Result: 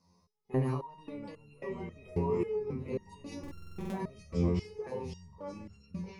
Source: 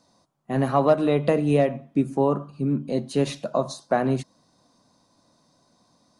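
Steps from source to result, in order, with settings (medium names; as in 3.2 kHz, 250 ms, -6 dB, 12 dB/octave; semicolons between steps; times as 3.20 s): thinning echo 889 ms, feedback 53%, high-pass 570 Hz, level -11 dB; ever faster or slower copies 446 ms, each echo -4 st, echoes 3, each echo -6 dB; rippled EQ curve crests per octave 0.83, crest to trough 12 dB; level rider gain up to 4 dB; bass shelf 210 Hz +10 dB; peak limiter -12.5 dBFS, peak gain reduction 11.5 dB; buffer glitch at 3.39 s, samples 2048, times 10; resonator arpeggio 3.7 Hz 87–1400 Hz; trim -2.5 dB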